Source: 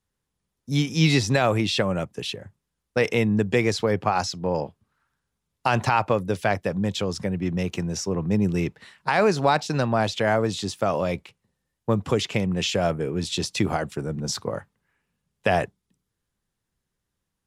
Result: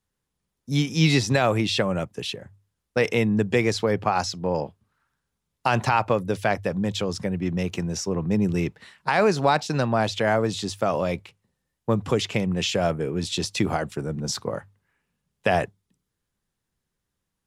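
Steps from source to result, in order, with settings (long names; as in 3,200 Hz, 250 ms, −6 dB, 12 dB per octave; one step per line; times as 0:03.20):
mains-hum notches 50/100 Hz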